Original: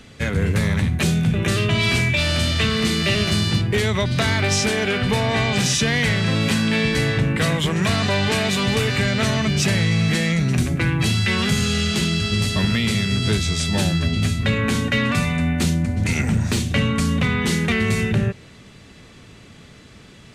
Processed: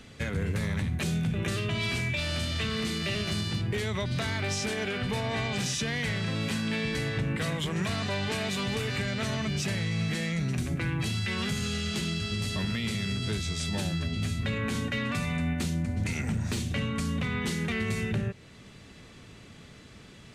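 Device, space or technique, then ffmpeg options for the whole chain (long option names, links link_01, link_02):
stacked limiters: -af "alimiter=limit=-12dB:level=0:latency=1:release=127,alimiter=limit=-16.5dB:level=0:latency=1:release=371,volume=-5dB"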